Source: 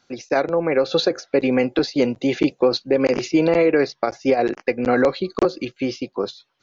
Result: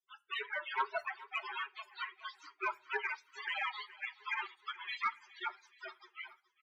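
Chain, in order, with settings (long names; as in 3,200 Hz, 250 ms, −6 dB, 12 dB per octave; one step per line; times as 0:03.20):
running median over 25 samples
Butterworth high-pass 510 Hz 72 dB per octave
gate on every frequency bin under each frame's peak −25 dB weak
in parallel at −2 dB: downward compressor, threshold −47 dBFS, peak gain reduction 14.5 dB
on the sum: spectral peaks only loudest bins 8
resonant band-pass 800 Hz, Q 0.54
sine wavefolder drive 5 dB, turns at −27 dBFS
repeating echo 421 ms, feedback 52%, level −19 dB
on a send at −17 dB: convolution reverb RT60 0.40 s, pre-delay 5 ms
on the sum: level +2.5 dB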